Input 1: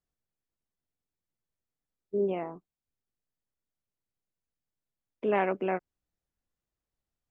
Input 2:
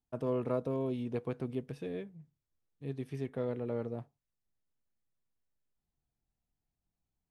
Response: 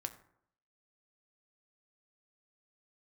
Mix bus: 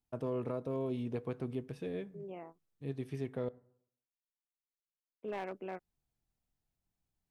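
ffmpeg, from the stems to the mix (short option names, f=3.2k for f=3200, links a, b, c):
-filter_complex "[0:a]agate=range=-16dB:threshold=-37dB:ratio=16:detection=peak,asoftclip=type=hard:threshold=-20.5dB,volume=-12.5dB[a];[1:a]alimiter=level_in=2.5dB:limit=-24dB:level=0:latency=1:release=324,volume=-2.5dB,volume=-3dB,asplit=3[b][c][d];[b]atrim=end=3.49,asetpts=PTS-STARTPTS,afade=t=out:st=3.486:d=0.004:c=hsin[e];[c]atrim=start=3.49:end=5.24,asetpts=PTS-STARTPTS,volume=0[f];[d]atrim=start=5.24,asetpts=PTS-STARTPTS,afade=t=in:d=0.004:c=hsin[g];[e][f][g]concat=n=3:v=0:a=1,asplit=3[h][i][j];[i]volume=-5dB[k];[j]apad=whole_len=322271[l];[a][l]sidechaincompress=threshold=-59dB:ratio=8:attack=16:release=195[m];[2:a]atrim=start_sample=2205[n];[k][n]afir=irnorm=-1:irlink=0[o];[m][h][o]amix=inputs=3:normalize=0"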